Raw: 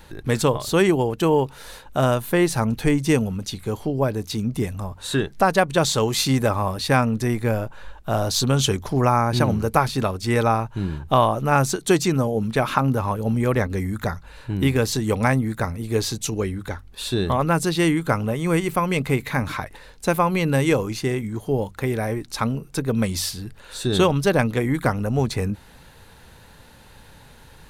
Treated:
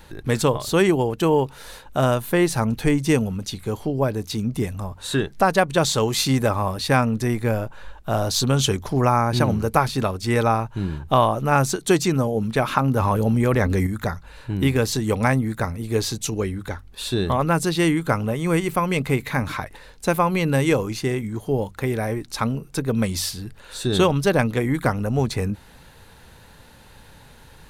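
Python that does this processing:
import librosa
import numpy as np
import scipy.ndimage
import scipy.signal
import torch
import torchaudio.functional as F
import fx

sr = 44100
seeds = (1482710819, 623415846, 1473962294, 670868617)

y = fx.env_flatten(x, sr, amount_pct=70, at=(12.96, 13.87))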